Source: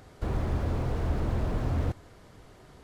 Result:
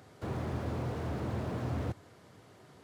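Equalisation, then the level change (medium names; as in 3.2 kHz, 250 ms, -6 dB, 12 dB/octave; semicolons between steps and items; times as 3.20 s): high-pass 92 Hz 24 dB/octave; -3.0 dB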